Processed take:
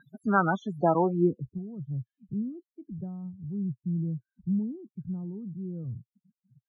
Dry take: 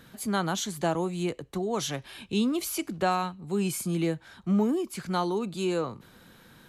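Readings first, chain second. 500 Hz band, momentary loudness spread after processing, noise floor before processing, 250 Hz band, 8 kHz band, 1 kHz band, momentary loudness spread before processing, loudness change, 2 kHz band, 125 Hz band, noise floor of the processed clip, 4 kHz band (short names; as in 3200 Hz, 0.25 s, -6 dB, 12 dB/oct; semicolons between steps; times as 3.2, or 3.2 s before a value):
-2.0 dB, 14 LU, -55 dBFS, -1.5 dB, under -30 dB, -0.5 dB, 6 LU, -1.5 dB, n/a, +1.5 dB, under -85 dBFS, under -20 dB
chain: switching spikes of -30 dBFS; loudest bins only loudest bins 16; low-pass sweep 1400 Hz -> 120 Hz, 0.91–1.47; gain +2.5 dB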